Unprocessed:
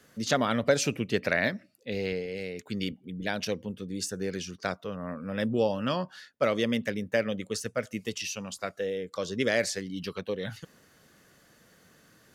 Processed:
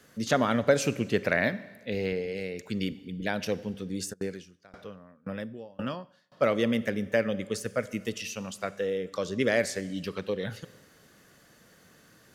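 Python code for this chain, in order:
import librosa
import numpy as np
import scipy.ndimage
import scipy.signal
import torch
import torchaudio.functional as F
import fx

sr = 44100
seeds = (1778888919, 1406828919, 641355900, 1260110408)

y = fx.dynamic_eq(x, sr, hz=4800.0, q=0.81, threshold_db=-46.0, ratio=4.0, max_db=-6)
y = fx.rev_schroeder(y, sr, rt60_s=1.3, comb_ms=31, drr_db=16.0)
y = fx.tremolo_decay(y, sr, direction='decaying', hz=1.9, depth_db=29, at=(4.12, 6.32), fade=0.02)
y = F.gain(torch.from_numpy(y), 1.5).numpy()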